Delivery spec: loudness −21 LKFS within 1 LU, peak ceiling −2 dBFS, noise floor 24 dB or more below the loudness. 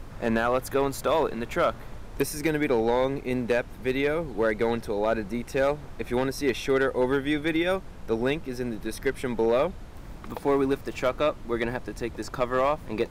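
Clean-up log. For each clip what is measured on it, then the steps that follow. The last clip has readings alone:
share of clipped samples 0.6%; peaks flattened at −15.5 dBFS; background noise floor −42 dBFS; target noise floor −51 dBFS; integrated loudness −27.0 LKFS; sample peak −15.5 dBFS; target loudness −21.0 LKFS
→ clipped peaks rebuilt −15.5 dBFS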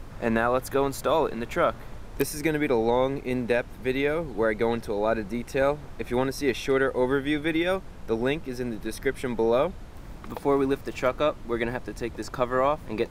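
share of clipped samples 0.0%; background noise floor −42 dBFS; target noise floor −51 dBFS
→ noise reduction from a noise print 9 dB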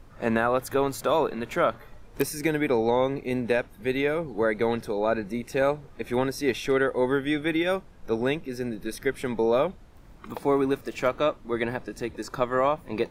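background noise floor −49 dBFS; target noise floor −51 dBFS
→ noise reduction from a noise print 6 dB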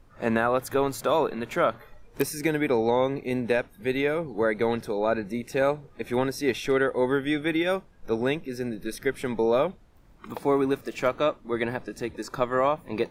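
background noise floor −54 dBFS; integrated loudness −27.0 LKFS; sample peak −8.5 dBFS; target loudness −21.0 LKFS
→ level +6 dB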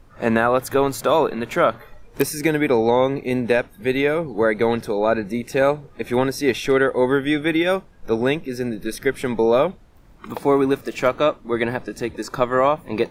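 integrated loudness −20.5 LKFS; sample peak −2.5 dBFS; background noise floor −48 dBFS

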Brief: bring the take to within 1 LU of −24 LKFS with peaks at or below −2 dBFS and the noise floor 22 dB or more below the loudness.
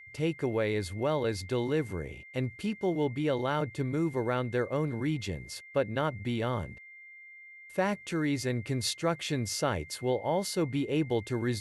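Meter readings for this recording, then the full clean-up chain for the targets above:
interfering tone 2,100 Hz; level of the tone −48 dBFS; integrated loudness −31.5 LKFS; sample peak −16.0 dBFS; target loudness −24.0 LKFS
→ notch filter 2,100 Hz, Q 30
level +7.5 dB

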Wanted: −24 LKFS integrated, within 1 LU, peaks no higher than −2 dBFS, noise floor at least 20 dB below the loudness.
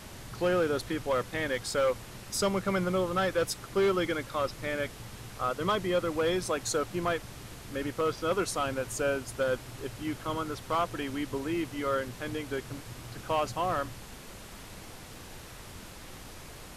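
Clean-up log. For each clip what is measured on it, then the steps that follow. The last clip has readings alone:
share of clipped samples 0.6%; peaks flattened at −21.0 dBFS; background noise floor −47 dBFS; target noise floor −51 dBFS; integrated loudness −31.0 LKFS; sample peak −21.0 dBFS; target loudness −24.0 LKFS
→ clipped peaks rebuilt −21 dBFS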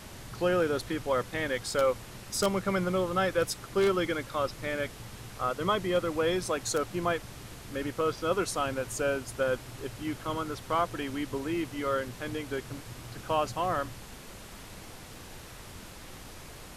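share of clipped samples 0.0%; background noise floor −47 dBFS; target noise floor −51 dBFS
→ noise reduction from a noise print 6 dB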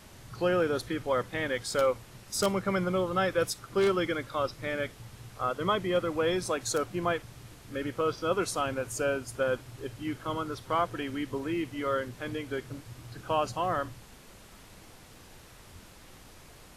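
background noise floor −53 dBFS; integrated loudness −31.0 LKFS; sample peak −12.0 dBFS; target loudness −24.0 LKFS
→ level +7 dB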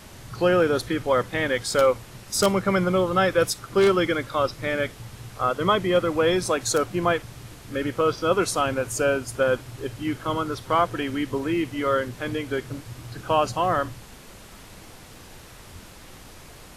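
integrated loudness −24.0 LKFS; sample peak −5.0 dBFS; background noise floor −46 dBFS

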